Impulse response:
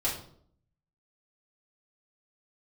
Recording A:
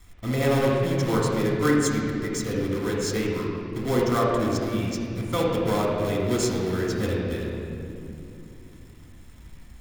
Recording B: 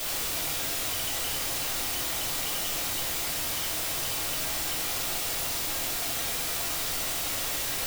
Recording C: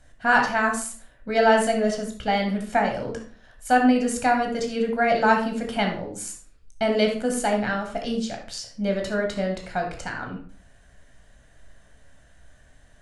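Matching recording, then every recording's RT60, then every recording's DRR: B; 2.7, 0.60, 0.45 seconds; −4.0, −7.5, 2.0 decibels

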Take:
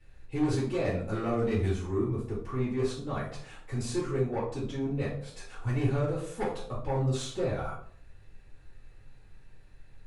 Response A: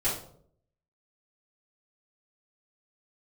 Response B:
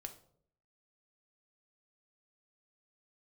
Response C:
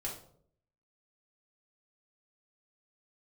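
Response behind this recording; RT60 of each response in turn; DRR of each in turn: A; 0.60, 0.65, 0.60 seconds; −12.5, 5.5, −4.5 decibels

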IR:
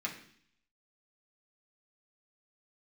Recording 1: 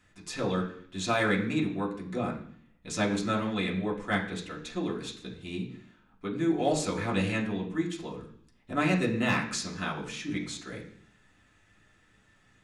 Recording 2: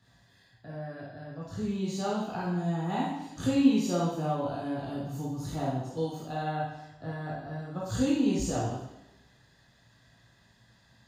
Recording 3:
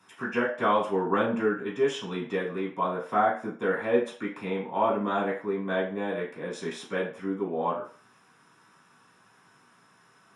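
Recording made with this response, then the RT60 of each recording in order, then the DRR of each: 1; 0.60, 0.95, 0.45 seconds; −3.0, −6.5, −6.5 decibels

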